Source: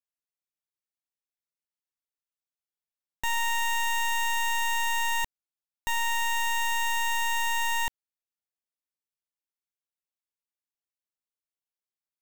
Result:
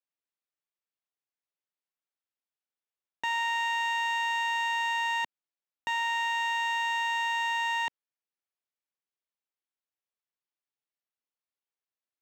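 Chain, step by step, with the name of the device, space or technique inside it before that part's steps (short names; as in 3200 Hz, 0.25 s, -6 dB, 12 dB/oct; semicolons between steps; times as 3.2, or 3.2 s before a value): early digital voice recorder (BPF 250–3800 Hz; block floating point 7-bit)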